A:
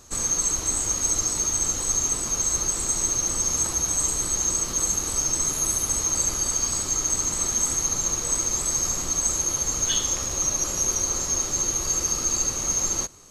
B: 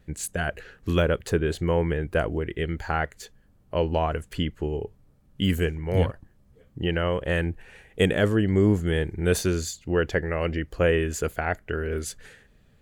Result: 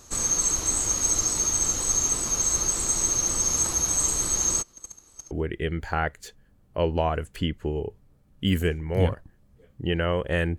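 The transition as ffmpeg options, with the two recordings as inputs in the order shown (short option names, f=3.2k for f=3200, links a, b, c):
-filter_complex "[0:a]asplit=3[a][b][c];[a]afade=t=out:st=4.61:d=0.02[d];[b]agate=range=-28dB:threshold=-20dB:ratio=16:release=100:detection=peak,afade=t=in:st=4.61:d=0.02,afade=t=out:st=5.31:d=0.02[e];[c]afade=t=in:st=5.31:d=0.02[f];[d][e][f]amix=inputs=3:normalize=0,apad=whole_dur=10.58,atrim=end=10.58,atrim=end=5.312[g];[1:a]atrim=start=2.278:end=7.55[h];[g][h]acrossfade=d=0.004:c1=hsin:c2=hsin"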